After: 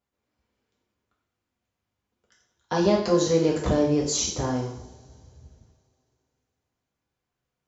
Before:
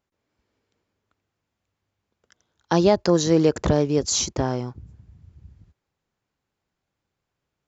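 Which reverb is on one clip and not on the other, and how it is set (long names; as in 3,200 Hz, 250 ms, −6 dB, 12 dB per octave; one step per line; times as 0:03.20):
coupled-rooms reverb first 0.6 s, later 3 s, from −25 dB, DRR −4 dB
level −8 dB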